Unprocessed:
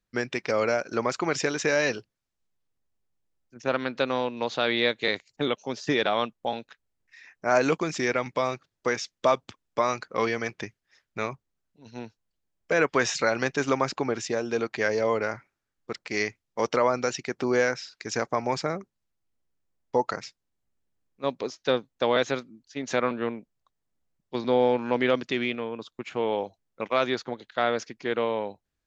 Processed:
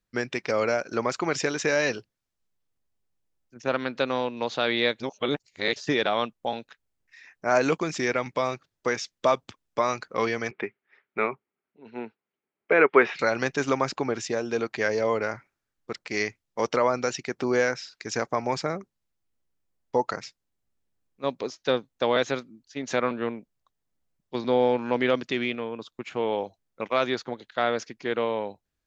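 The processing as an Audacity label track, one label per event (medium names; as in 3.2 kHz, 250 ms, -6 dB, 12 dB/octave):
5.000000	5.760000	reverse
10.510000	13.190000	cabinet simulation 210–3000 Hz, peaks and dips at 220 Hz +4 dB, 400 Hz +10 dB, 840 Hz +4 dB, 1.3 kHz +6 dB, 2.2 kHz +7 dB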